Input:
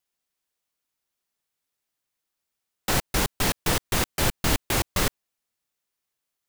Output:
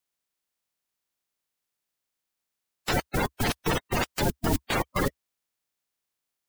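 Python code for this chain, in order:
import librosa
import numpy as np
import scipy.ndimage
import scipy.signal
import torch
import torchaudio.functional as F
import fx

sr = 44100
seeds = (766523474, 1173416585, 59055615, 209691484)

y = fx.spec_quant(x, sr, step_db=30)
y = fx.peak_eq(y, sr, hz=68.0, db=-3.0, octaves=0.44)
y = y * librosa.db_to_amplitude(-1.5)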